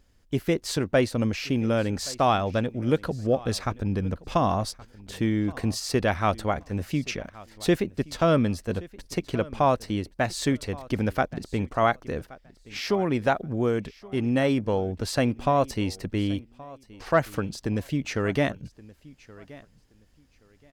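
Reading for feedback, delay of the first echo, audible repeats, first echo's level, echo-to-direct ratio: 22%, 1124 ms, 2, -21.0 dB, -21.0 dB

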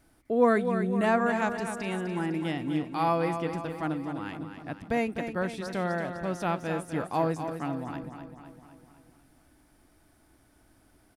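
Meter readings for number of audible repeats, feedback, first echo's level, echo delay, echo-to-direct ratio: 6, 56%, -8.5 dB, 253 ms, -7.0 dB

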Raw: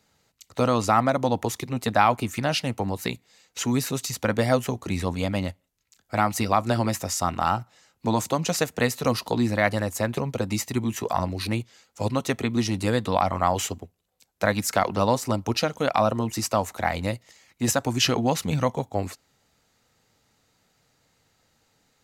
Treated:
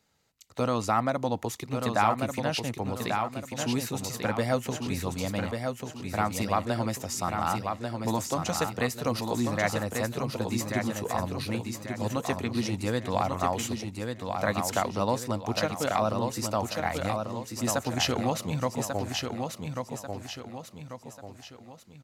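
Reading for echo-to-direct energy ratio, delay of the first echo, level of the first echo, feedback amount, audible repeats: -4.0 dB, 1141 ms, -5.0 dB, 41%, 4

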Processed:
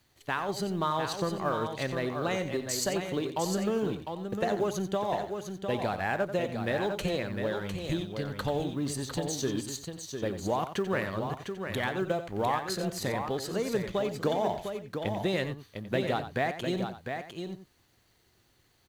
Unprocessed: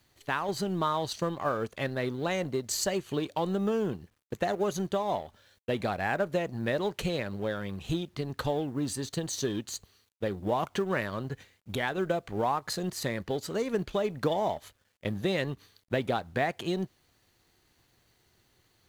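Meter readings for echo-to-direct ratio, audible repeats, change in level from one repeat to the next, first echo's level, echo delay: -5.0 dB, 3, no regular repeats, -11.0 dB, 90 ms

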